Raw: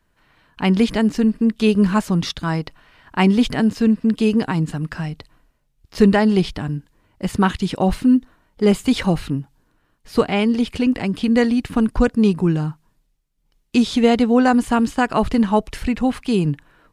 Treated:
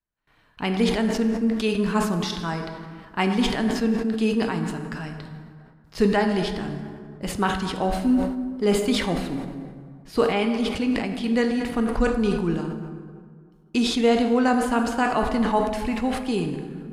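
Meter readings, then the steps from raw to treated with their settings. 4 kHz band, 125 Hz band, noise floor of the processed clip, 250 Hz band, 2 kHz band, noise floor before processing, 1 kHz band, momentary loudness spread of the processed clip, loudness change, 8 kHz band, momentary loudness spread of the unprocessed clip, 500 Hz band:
−1.5 dB, −8.0 dB, −54 dBFS, −6.0 dB, −2.5 dB, −66 dBFS, −2.5 dB, 14 LU, −5.0 dB, −0.5 dB, 11 LU, −3.0 dB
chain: noise gate with hold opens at −47 dBFS
dense smooth reverb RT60 2 s, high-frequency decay 0.55×, DRR 4.5 dB
dynamic equaliser 120 Hz, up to −8 dB, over −31 dBFS, Q 0.89
level that may fall only so fast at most 62 dB per second
level −5 dB

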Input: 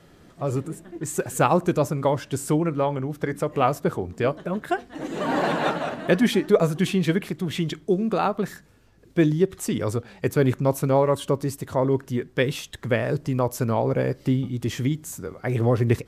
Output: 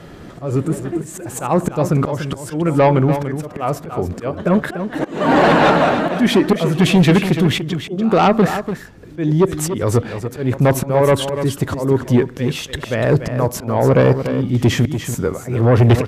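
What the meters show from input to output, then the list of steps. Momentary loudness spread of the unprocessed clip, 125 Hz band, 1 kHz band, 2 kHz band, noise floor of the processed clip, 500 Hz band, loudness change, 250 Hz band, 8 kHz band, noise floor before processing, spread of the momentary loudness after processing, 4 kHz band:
9 LU, +8.5 dB, +7.5 dB, +8.0 dB, −36 dBFS, +6.5 dB, +7.5 dB, +7.5 dB, +6.0 dB, −53 dBFS, 11 LU, +9.0 dB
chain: high-shelf EQ 4,100 Hz −7.5 dB
in parallel at −1 dB: brickwall limiter −16.5 dBFS, peak gain reduction 10.5 dB
on the sum: volume swells 352 ms
echo ahead of the sound 136 ms −23.5 dB
harmonic generator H 5 −8 dB, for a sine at −4.5 dBFS
on a send: single-tap delay 291 ms −9.5 dB

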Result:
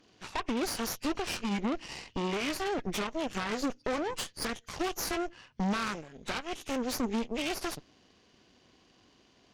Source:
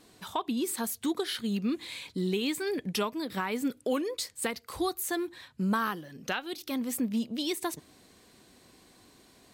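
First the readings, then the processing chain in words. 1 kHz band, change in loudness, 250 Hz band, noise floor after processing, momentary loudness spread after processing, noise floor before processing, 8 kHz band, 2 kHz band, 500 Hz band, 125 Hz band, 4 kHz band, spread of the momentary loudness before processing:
0.0 dB, −1.5 dB, −2.5 dB, −64 dBFS, 6 LU, −60 dBFS, −2.0 dB, 0.0 dB, −1.5 dB, −2.0 dB, −1.0 dB, 5 LU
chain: hearing-aid frequency compression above 1,500 Hz 1.5 to 1
brickwall limiter −24.5 dBFS, peak gain reduction 6 dB
harmonic generator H 3 −17 dB, 4 −9 dB, 8 −23 dB, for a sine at −24.5 dBFS

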